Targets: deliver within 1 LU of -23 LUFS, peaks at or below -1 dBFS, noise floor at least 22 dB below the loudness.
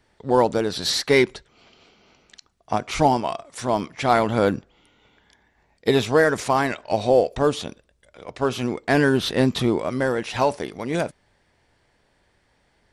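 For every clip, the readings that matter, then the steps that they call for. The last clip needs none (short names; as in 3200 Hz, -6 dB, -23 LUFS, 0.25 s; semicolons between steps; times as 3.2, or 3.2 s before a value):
loudness -22.0 LUFS; peak -4.5 dBFS; loudness target -23.0 LUFS
-> gain -1 dB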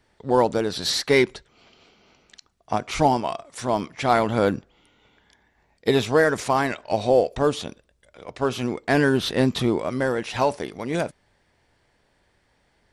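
loudness -23.0 LUFS; peak -5.5 dBFS; noise floor -67 dBFS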